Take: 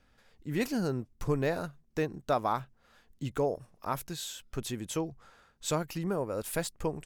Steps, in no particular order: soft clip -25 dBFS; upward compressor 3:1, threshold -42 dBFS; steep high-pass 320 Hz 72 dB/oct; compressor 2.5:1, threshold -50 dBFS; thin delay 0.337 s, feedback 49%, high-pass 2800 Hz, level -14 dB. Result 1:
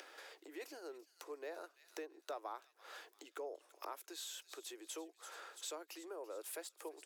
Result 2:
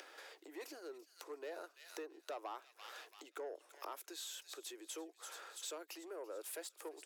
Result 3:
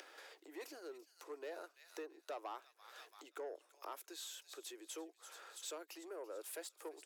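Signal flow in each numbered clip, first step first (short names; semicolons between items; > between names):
compressor > thin delay > upward compressor > steep high-pass > soft clip; soft clip > thin delay > compressor > upward compressor > steep high-pass; thin delay > upward compressor > soft clip > compressor > steep high-pass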